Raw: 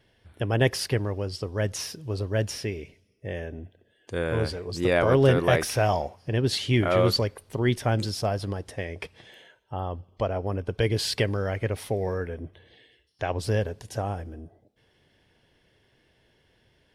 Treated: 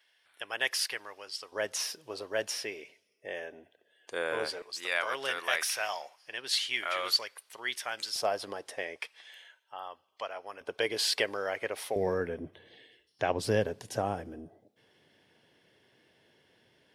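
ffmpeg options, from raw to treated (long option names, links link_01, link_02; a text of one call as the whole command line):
ffmpeg -i in.wav -af "asetnsamples=nb_out_samples=441:pad=0,asendcmd='1.52 highpass f 600;4.62 highpass f 1400;8.16 highpass f 540;8.96 highpass f 1200;10.61 highpass f 570;11.96 highpass f 170',highpass=1300" out.wav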